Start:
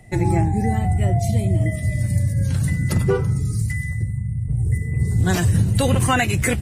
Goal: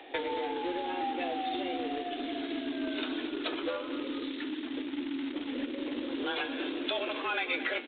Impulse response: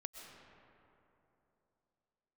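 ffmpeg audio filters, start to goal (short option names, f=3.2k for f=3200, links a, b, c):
-filter_complex "[0:a]highpass=260,bandreject=f=2k:w=5.6,alimiter=limit=-18dB:level=0:latency=1:release=324,acompressor=threshold=-35dB:ratio=12,asetrate=37044,aresample=44100,afreqshift=180,aresample=11025,acrusher=bits=3:mode=log:mix=0:aa=0.000001,aresample=44100,flanger=delay=9.3:depth=3.5:regen=81:speed=0.43:shape=triangular,asoftclip=type=tanh:threshold=-34.5dB,crystalizer=i=7:c=0,asplit=2[a][b];[b]aecho=0:1:225:0.237[c];[a][c]amix=inputs=2:normalize=0,volume=8dB" -ar 8000 -c:a pcm_alaw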